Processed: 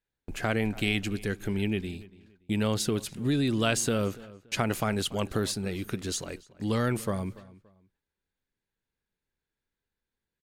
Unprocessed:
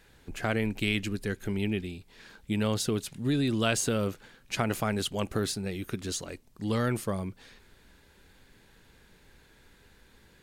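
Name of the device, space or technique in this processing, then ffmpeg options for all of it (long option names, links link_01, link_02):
parallel compression: -filter_complex "[0:a]asplit=2[link_01][link_02];[link_02]acompressor=threshold=-37dB:ratio=6,volume=-8.5dB[link_03];[link_01][link_03]amix=inputs=2:normalize=0,agate=range=-33dB:threshold=-44dB:ratio=16:detection=peak,asettb=1/sr,asplit=3[link_04][link_05][link_06];[link_04]atrim=end=0.604[link_07];[link_05]atrim=start=0.6:end=1.1,asetpts=PTS-STARTPTS,afade=type=in:duration=0.004:curve=qsin,afade=type=out:start_time=0.496:duration=0.004:curve=qsin,equalizer=frequency=750:width=6.9:gain=13[link_08];[link_06]atrim=start=1.096[link_09];[link_07][link_08]acrossfade=duration=0.004:curve1=hsin:curve2=qsin[link_10];[link_10][link_09]acrossfade=duration=0.004:curve1=qsin:curve2=hsin,asplit=2[link_11][link_12];[link_12]adelay=286,lowpass=frequency=3300:poles=1,volume=-19.5dB,asplit=2[link_13][link_14];[link_14]adelay=286,lowpass=frequency=3300:poles=1,volume=0.29[link_15];[link_11][link_13][link_15]amix=inputs=3:normalize=0"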